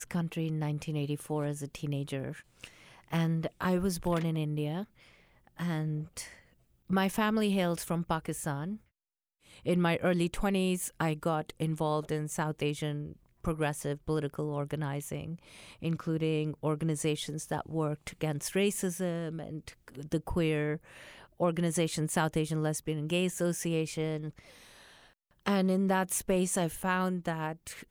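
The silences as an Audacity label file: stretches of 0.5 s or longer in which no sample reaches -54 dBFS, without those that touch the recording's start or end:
8.790000	9.450000	silence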